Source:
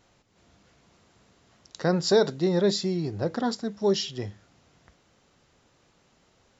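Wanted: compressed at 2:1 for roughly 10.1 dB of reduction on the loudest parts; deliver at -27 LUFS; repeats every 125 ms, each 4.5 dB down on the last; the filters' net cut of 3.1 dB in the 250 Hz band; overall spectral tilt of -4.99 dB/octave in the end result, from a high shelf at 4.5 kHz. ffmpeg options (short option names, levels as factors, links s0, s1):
-af "equalizer=f=250:t=o:g=-5,highshelf=f=4500:g=-8.5,acompressor=threshold=0.0158:ratio=2,aecho=1:1:125|250|375|500|625|750|875|1000|1125:0.596|0.357|0.214|0.129|0.0772|0.0463|0.0278|0.0167|0.01,volume=2.24"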